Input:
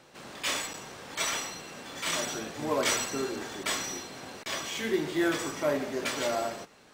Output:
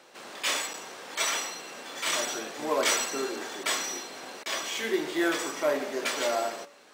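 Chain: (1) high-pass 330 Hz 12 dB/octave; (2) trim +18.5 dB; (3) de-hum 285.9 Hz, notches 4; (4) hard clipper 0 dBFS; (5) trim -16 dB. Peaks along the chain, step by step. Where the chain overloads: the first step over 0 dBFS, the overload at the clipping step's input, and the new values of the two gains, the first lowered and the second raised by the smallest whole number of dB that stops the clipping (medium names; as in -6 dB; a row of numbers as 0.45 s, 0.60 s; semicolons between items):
-14.0 dBFS, +4.5 dBFS, +4.5 dBFS, 0.0 dBFS, -16.0 dBFS; step 2, 4.5 dB; step 2 +13.5 dB, step 5 -11 dB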